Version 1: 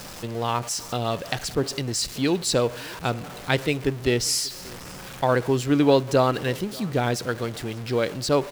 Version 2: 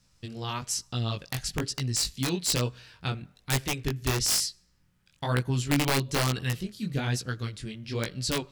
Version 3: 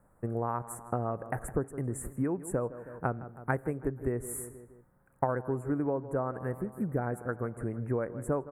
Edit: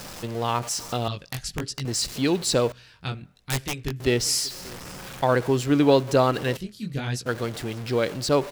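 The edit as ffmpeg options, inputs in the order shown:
-filter_complex "[1:a]asplit=3[a][b][c];[0:a]asplit=4[d][e][f][g];[d]atrim=end=1.082[h];[a]atrim=start=1.078:end=1.852[i];[e]atrim=start=1.848:end=2.722[j];[b]atrim=start=2.718:end=4.002[k];[f]atrim=start=3.998:end=6.572[l];[c]atrim=start=6.568:end=7.262[m];[g]atrim=start=7.258[n];[h][i]acrossfade=d=0.004:c1=hsin:c2=hsin[o];[o][j]acrossfade=d=0.004:c1=hsin:c2=hsin[p];[p][k]acrossfade=d=0.004:c1=hsin:c2=hsin[q];[q][l]acrossfade=d=0.004:c1=hsin:c2=hsin[r];[r][m]acrossfade=d=0.004:c1=hsin:c2=hsin[s];[s][n]acrossfade=d=0.004:c1=hsin:c2=hsin"

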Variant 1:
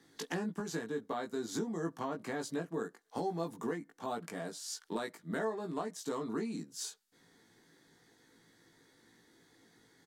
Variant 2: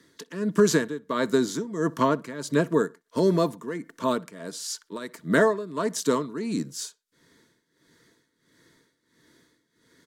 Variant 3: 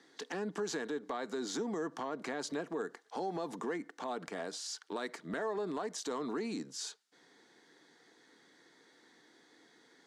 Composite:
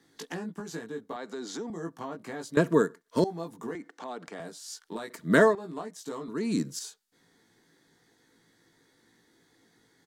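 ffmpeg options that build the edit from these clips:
-filter_complex "[2:a]asplit=2[a][b];[1:a]asplit=3[c][d][e];[0:a]asplit=6[f][g][h][i][j][k];[f]atrim=end=1.162[l];[a]atrim=start=1.158:end=1.702[m];[g]atrim=start=1.698:end=2.572[n];[c]atrim=start=2.568:end=3.242[o];[h]atrim=start=3.238:end=3.752[p];[b]atrim=start=3.748:end=4.402[q];[i]atrim=start=4.398:end=5.102[r];[d]atrim=start=5.098:end=5.552[s];[j]atrim=start=5.548:end=6.282[t];[e]atrim=start=6.278:end=6.792[u];[k]atrim=start=6.788[v];[l][m]acrossfade=d=0.004:c1=hsin:c2=hsin[w];[w][n]acrossfade=d=0.004:c1=hsin:c2=hsin[x];[x][o]acrossfade=d=0.004:c1=hsin:c2=hsin[y];[y][p]acrossfade=d=0.004:c1=hsin:c2=hsin[z];[z][q]acrossfade=d=0.004:c1=hsin:c2=hsin[aa];[aa][r]acrossfade=d=0.004:c1=hsin:c2=hsin[ab];[ab][s]acrossfade=d=0.004:c1=hsin:c2=hsin[ac];[ac][t]acrossfade=d=0.004:c1=hsin:c2=hsin[ad];[ad][u]acrossfade=d=0.004:c1=hsin:c2=hsin[ae];[ae][v]acrossfade=d=0.004:c1=hsin:c2=hsin"

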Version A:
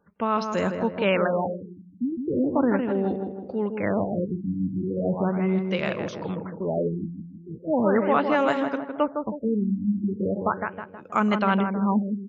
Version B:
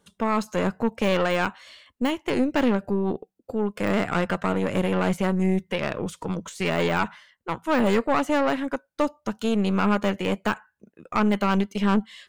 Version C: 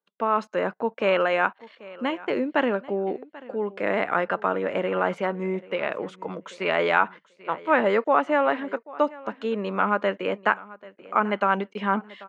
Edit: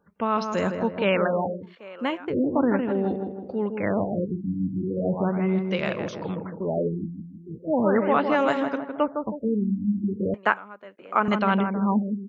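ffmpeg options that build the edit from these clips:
-filter_complex "[2:a]asplit=2[a][b];[0:a]asplit=3[c][d][e];[c]atrim=end=1.77[f];[a]atrim=start=1.61:end=2.35[g];[d]atrim=start=2.19:end=10.342[h];[b]atrim=start=10.338:end=11.282[i];[e]atrim=start=11.278[j];[f][g]acrossfade=d=0.16:c1=tri:c2=tri[k];[k][h]acrossfade=d=0.16:c1=tri:c2=tri[l];[l][i]acrossfade=d=0.004:c1=hsin:c2=hsin[m];[m][j]acrossfade=d=0.004:c1=hsin:c2=hsin"

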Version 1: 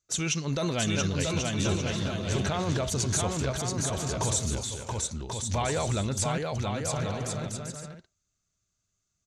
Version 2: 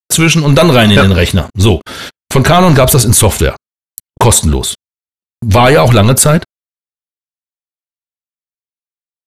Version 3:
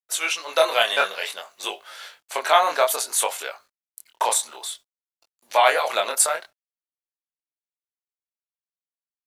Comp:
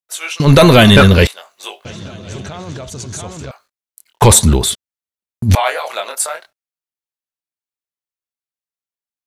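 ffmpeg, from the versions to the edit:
-filter_complex "[1:a]asplit=2[a][b];[2:a]asplit=4[c][d][e][f];[c]atrim=end=0.402[g];[a]atrim=start=0.398:end=1.272[h];[d]atrim=start=1.268:end=1.852[i];[0:a]atrim=start=1.848:end=3.512[j];[e]atrim=start=3.508:end=4.222[k];[b]atrim=start=4.218:end=5.552[l];[f]atrim=start=5.548[m];[g][h]acrossfade=d=0.004:c1=hsin:c2=hsin[n];[n][i]acrossfade=d=0.004:c1=hsin:c2=hsin[o];[o][j]acrossfade=d=0.004:c1=hsin:c2=hsin[p];[p][k]acrossfade=d=0.004:c1=hsin:c2=hsin[q];[q][l]acrossfade=d=0.004:c1=hsin:c2=hsin[r];[r][m]acrossfade=d=0.004:c1=hsin:c2=hsin"

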